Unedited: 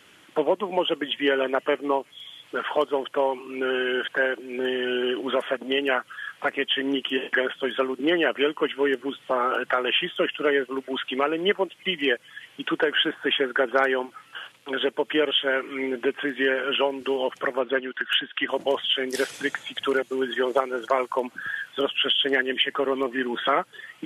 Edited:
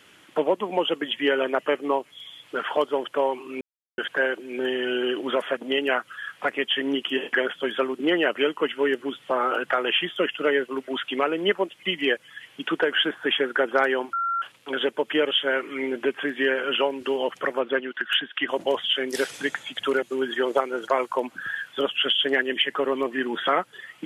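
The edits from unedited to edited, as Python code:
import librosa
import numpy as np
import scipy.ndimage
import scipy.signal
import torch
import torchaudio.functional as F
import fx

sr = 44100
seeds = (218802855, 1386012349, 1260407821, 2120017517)

y = fx.edit(x, sr, fx.silence(start_s=3.61, length_s=0.37),
    fx.bleep(start_s=14.13, length_s=0.29, hz=1370.0, db=-22.5), tone=tone)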